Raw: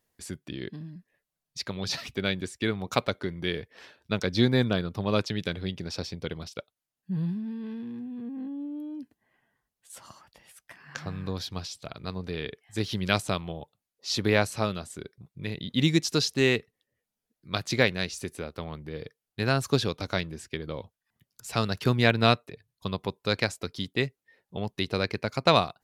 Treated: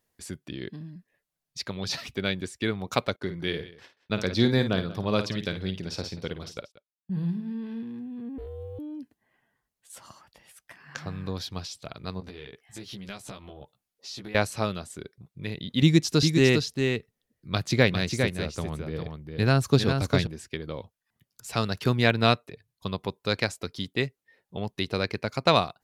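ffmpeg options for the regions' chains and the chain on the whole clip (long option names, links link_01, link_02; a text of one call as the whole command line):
ffmpeg -i in.wav -filter_complex "[0:a]asettb=1/sr,asplit=3[link_01][link_02][link_03];[link_01]atrim=end=3.164[link_04];[link_02]atrim=start=3.16:end=7.83,asetpts=PTS-STARTPTS,afade=type=in:duration=0.004:curve=qsin,afade=type=out:start_time=4.666:duration=0.004:curve=qsin,agate=range=-23dB:threshold=-50dB:ratio=16:release=100:detection=peak,aecho=1:1:53|184:0.316|0.119,atrim=end_sample=205947[link_05];[link_03]atrim=start=7.826[link_06];[link_04][link_05]acrossfade=duration=0.004:curve1=hsin:curve2=qsin[link_07];[link_07][link_06]acrossfade=duration=0.004:curve1=qsin:curve2=hsin,asettb=1/sr,asplit=3[link_08][link_09][link_10];[link_08]atrim=end=8.384[link_11];[link_09]atrim=start=8.38:end=8.79,asetpts=PTS-STARTPTS,afade=type=in:duration=0.004:curve=qsin,afade=type=out:start_time=0.406:duration=0.004:curve=qsin,highshelf=frequency=3500:gain=10.5,aeval=exprs='val(0)*sin(2*PI*200*n/s)':channel_layout=same[link_12];[link_10]atrim=start=8.786[link_13];[link_11][link_12]acrossfade=duration=0.004:curve1=hsin:curve2=qsin[link_14];[link_14][link_13]acrossfade=duration=0.004:curve1=qsin:curve2=hsin,asettb=1/sr,asplit=3[link_15][link_16][link_17];[link_15]atrim=end=12.204[link_18];[link_16]atrim=start=12.2:end=14.35,asetpts=PTS-STARTPTS,afade=type=in:duration=0.004:curve=qsin,afade=type=out:start_time=2.146:duration=0.004:curve=qsin,acompressor=threshold=-40dB:ratio=4:attack=3.2:release=140:knee=1:detection=peak,asplit=2[link_19][link_20];[link_20]adelay=15,volume=-2.5dB[link_21];[link_19][link_21]amix=inputs=2:normalize=0,atrim=end_sample=94815[link_22];[link_17]atrim=start=14.346[link_23];[link_18][link_22]acrossfade=duration=0.004:curve1=hsin:curve2=qsin[link_24];[link_24][link_23]acrossfade=duration=0.004:curve1=qsin:curve2=hsin,asettb=1/sr,asplit=3[link_25][link_26][link_27];[link_25]atrim=end=15.824[link_28];[link_26]atrim=start=15.82:end=20.27,asetpts=PTS-STARTPTS,afade=type=in:duration=0.004:curve=qsin,afade=type=out:start_time=4.446:duration=0.004:curve=qsin,lowshelf=frequency=260:gain=7.5,aecho=1:1:404:0.531,atrim=end_sample=196245[link_29];[link_27]atrim=start=20.266[link_30];[link_28][link_29]acrossfade=duration=0.004:curve1=hsin:curve2=qsin[link_31];[link_31][link_30]acrossfade=duration=0.004:curve1=qsin:curve2=hsin" out.wav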